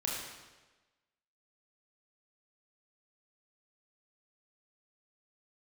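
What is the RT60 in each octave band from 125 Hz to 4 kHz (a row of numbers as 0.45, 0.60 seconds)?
1.2, 1.2, 1.3, 1.2, 1.2, 1.1 seconds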